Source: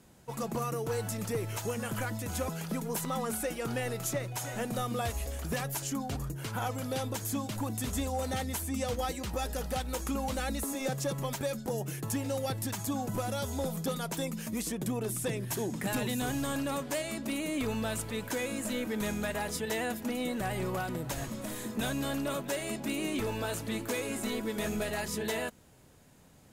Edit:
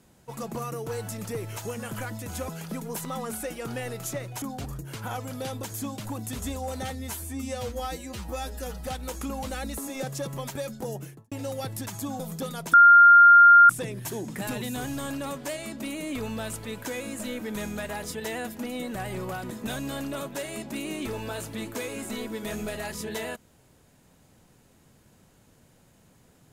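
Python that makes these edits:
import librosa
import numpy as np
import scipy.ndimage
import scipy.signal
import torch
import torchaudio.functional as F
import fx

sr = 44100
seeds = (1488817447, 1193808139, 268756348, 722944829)

y = fx.studio_fade_out(x, sr, start_s=11.78, length_s=0.39)
y = fx.edit(y, sr, fx.cut(start_s=4.42, length_s=1.51),
    fx.stretch_span(start_s=8.41, length_s=1.31, factor=1.5),
    fx.cut(start_s=13.05, length_s=0.6),
    fx.bleep(start_s=14.19, length_s=0.96, hz=1400.0, db=-9.5),
    fx.cut(start_s=20.96, length_s=0.68), tone=tone)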